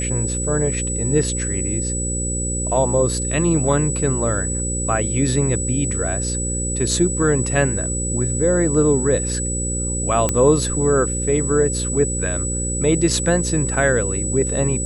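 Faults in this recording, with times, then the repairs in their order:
buzz 60 Hz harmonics 9 -25 dBFS
tone 7900 Hz -24 dBFS
10.29 pop -5 dBFS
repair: de-click; de-hum 60 Hz, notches 9; notch 7900 Hz, Q 30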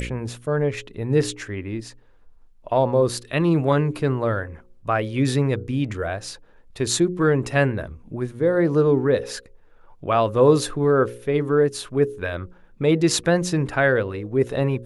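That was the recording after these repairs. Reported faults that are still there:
none

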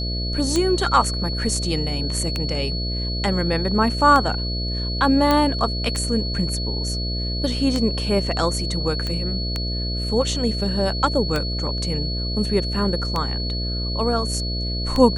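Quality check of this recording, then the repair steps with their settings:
buzz 60 Hz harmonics 11 -26 dBFS
tick 33 1/3 rpm -9 dBFS
tone 4400 Hz -28 dBFS
5.31 pop -6 dBFS
9.07 pop -14 dBFS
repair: de-click; notch 4400 Hz, Q 30; de-hum 60 Hz, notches 11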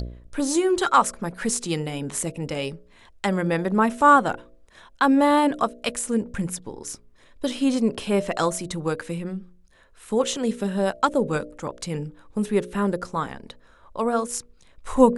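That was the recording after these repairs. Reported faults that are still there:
none

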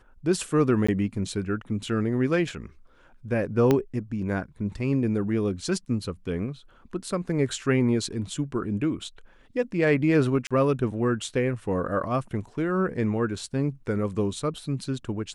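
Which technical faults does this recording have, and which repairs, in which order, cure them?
0.87–0.89 gap 15 ms
3.71 pop -9 dBFS
10.47–10.51 gap 36 ms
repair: de-click; interpolate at 0.87, 15 ms; interpolate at 10.47, 36 ms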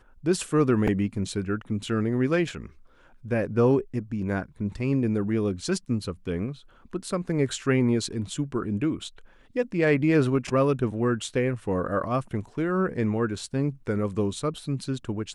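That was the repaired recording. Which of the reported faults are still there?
3.71 pop

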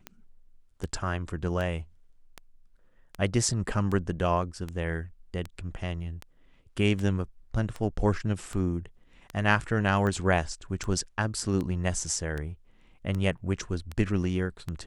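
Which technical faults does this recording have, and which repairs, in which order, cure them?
tick 78 rpm -21 dBFS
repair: de-click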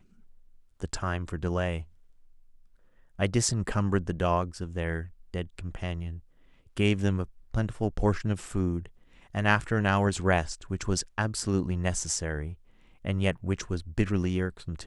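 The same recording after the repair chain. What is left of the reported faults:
none

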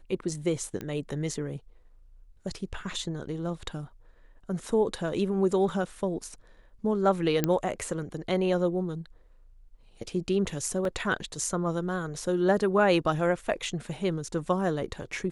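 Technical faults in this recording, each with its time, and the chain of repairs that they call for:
0.81 pop -21 dBFS
7.44 pop -10 dBFS
10.85 gap 2.1 ms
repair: de-click; interpolate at 10.85, 2.1 ms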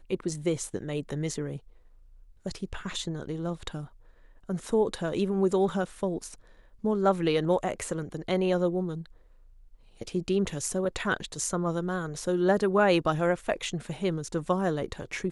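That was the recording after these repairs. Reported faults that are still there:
none

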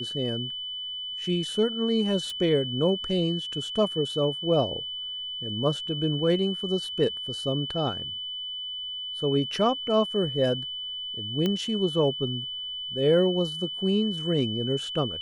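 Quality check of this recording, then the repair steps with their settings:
tone 3000 Hz -32 dBFS
2.3 pop
11.46 pop -14 dBFS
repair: de-click; notch 3000 Hz, Q 30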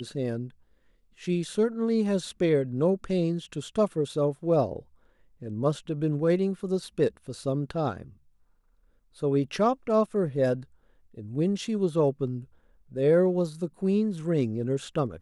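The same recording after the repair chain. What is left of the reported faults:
11.46 pop

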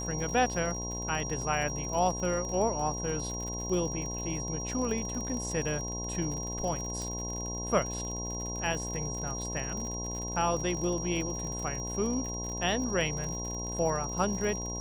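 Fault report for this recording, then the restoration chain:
buzz 60 Hz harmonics 18 -38 dBFS
crackle 60/s -36 dBFS
tone 5700 Hz -37 dBFS
7.02 pop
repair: de-click; de-hum 60 Hz, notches 18; notch 5700 Hz, Q 30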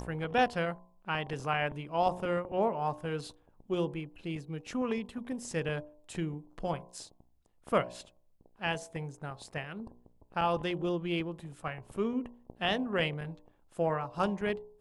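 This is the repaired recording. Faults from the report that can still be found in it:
none

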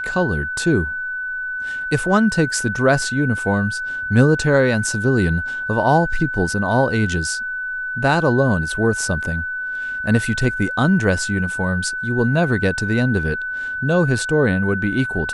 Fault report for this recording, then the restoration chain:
tone 1500 Hz -23 dBFS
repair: notch 1500 Hz, Q 30

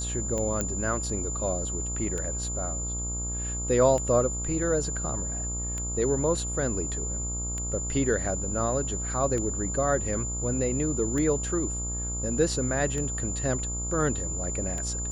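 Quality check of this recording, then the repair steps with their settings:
buzz 60 Hz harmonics 23 -34 dBFS
tick 33 1/3 rpm -20 dBFS
tone 7100 Hz -32 dBFS
0.61 pop -13 dBFS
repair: de-click; de-hum 60 Hz, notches 23; notch 7100 Hz, Q 30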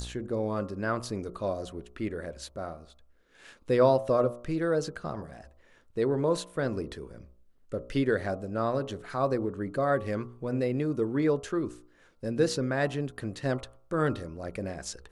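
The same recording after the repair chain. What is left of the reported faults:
none

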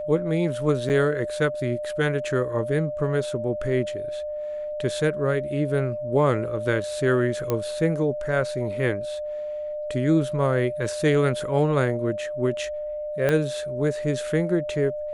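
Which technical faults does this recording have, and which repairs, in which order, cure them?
tone 600 Hz -28 dBFS
0.89–0.9 gap 8.2 ms
7.5 pop -11 dBFS
13.29 pop -10 dBFS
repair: de-click; notch 600 Hz, Q 30; interpolate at 0.89, 8.2 ms

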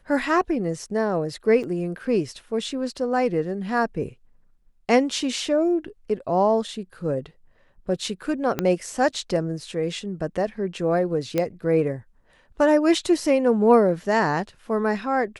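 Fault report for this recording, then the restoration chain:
1.63–1.64 gap 6.8 ms
8.59 pop -9 dBFS
11.38 pop -10 dBFS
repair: de-click; interpolate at 1.63, 6.8 ms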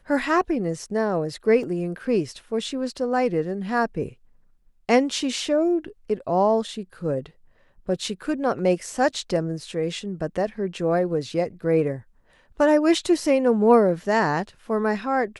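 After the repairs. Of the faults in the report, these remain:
8.59 pop

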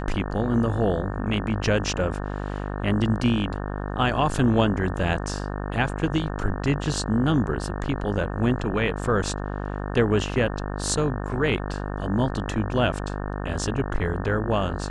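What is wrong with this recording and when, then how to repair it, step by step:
buzz 50 Hz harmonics 36 -30 dBFS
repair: de-hum 50 Hz, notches 36

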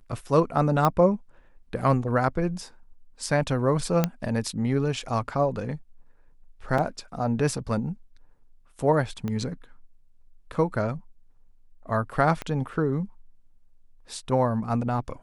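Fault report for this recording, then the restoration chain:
0.85 pop -9 dBFS
4.04 pop -8 dBFS
6.78 gap 3.8 ms
9.28 pop -19 dBFS
12.42 pop -17 dBFS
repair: de-click; interpolate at 6.78, 3.8 ms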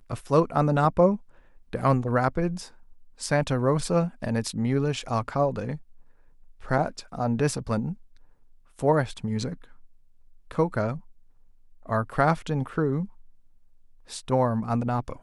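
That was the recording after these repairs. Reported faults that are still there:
9.28 pop
12.42 pop

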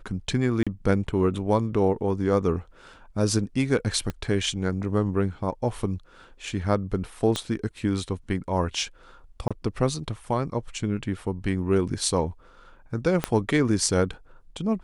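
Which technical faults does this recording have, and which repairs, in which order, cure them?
0.63–0.67 gap 36 ms
4.1 pop -17 dBFS
7.36 pop -13 dBFS
9.48–9.51 gap 26 ms
13.24 pop -9 dBFS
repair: de-click; interpolate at 0.63, 36 ms; interpolate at 9.48, 26 ms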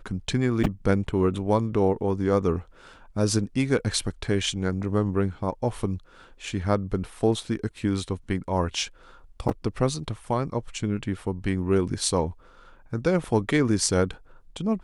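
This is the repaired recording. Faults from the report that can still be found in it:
4.1 pop
7.36 pop
13.24 pop

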